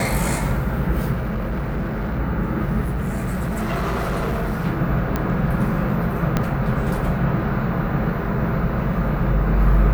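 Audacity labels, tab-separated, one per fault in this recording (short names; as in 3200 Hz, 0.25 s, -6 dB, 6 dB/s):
1.120000	2.200000	clipped -20.5 dBFS
2.810000	4.670000	clipped -19.5 dBFS
5.160000	5.160000	pop -9 dBFS
6.370000	6.370000	pop -6 dBFS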